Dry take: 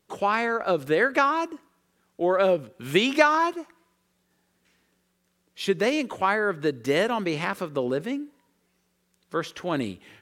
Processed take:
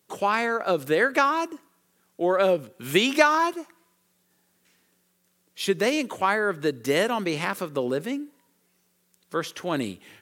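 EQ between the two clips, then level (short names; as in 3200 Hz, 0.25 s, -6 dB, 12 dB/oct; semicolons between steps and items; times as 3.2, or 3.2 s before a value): HPF 96 Hz; high shelf 7100 Hz +10.5 dB; 0.0 dB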